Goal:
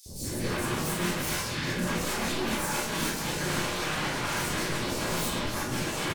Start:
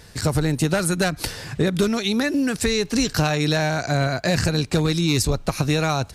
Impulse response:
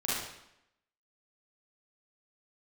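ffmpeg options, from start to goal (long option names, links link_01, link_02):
-filter_complex "[0:a]areverse,acompressor=threshold=-27dB:ratio=8,areverse,asplit=4[link_01][link_02][link_03][link_04];[link_02]asetrate=52444,aresample=44100,atempo=0.840896,volume=-5dB[link_05];[link_03]asetrate=58866,aresample=44100,atempo=0.749154,volume=-10dB[link_06];[link_04]asetrate=88200,aresample=44100,atempo=0.5,volume=-11dB[link_07];[link_01][link_05][link_06][link_07]amix=inputs=4:normalize=0,aeval=exprs='0.0266*(abs(mod(val(0)/0.0266+3,4)-2)-1)':channel_layout=same,acrossover=split=670|4600[link_08][link_09][link_10];[link_08]adelay=60[link_11];[link_09]adelay=240[link_12];[link_11][link_12][link_10]amix=inputs=3:normalize=0[link_13];[1:a]atrim=start_sample=2205,asetrate=61740,aresample=44100[link_14];[link_13][link_14]afir=irnorm=-1:irlink=0,volume=3dB"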